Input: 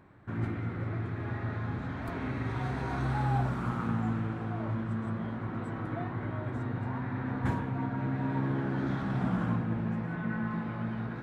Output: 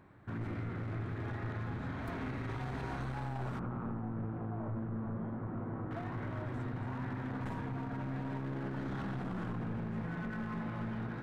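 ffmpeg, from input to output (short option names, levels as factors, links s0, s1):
-filter_complex "[0:a]aeval=exprs='clip(val(0),-1,0.0188)':c=same,asettb=1/sr,asplit=3[s0][s1][s2];[s0]atrim=end=3.594[s3];[s1]atrim=start=3.59:end=5.91,asetpts=PTS-STARTPTS,afade=t=in:d=0.004:c=qsin,afade=t=out:st=2.316:d=0.004:c=qsin,lowpass=1100[s4];[s2]atrim=start=5.906[s5];[s3][s4]acrossfade=d=0.004:c1=hsin:c2=qsin[s6];[s6][s5]acrossfade=d=0.004:c1=qsin:c2=hsin,alimiter=level_in=1.58:limit=0.0631:level=0:latency=1:release=31,volume=0.631,volume=0.794"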